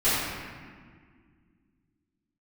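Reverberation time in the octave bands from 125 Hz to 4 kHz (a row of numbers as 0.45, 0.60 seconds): 2.8, 3.0, 2.0, 1.7, 1.7, 1.2 seconds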